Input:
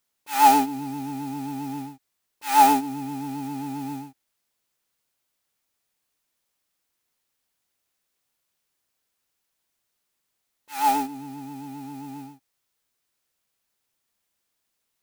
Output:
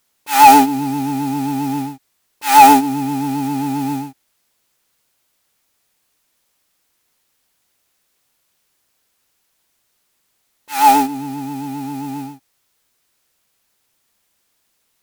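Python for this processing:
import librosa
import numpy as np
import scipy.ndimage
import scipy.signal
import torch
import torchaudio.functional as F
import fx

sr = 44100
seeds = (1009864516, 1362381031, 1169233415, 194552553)

y = fx.fold_sine(x, sr, drive_db=5, ceiling_db=-4.0)
y = y * librosa.db_to_amplitude(2.5)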